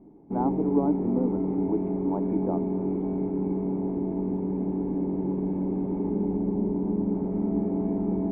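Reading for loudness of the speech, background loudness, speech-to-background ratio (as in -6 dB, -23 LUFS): -30.5 LUFS, -28.5 LUFS, -2.0 dB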